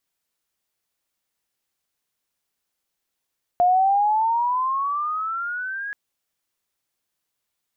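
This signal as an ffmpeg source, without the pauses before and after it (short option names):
-f lavfi -i "aevalsrc='pow(10,(-13.5-14*t/2.33)/20)*sin(2*PI*704*2.33/(15*log(2)/12)*(exp(15*log(2)/12*t/2.33)-1))':d=2.33:s=44100"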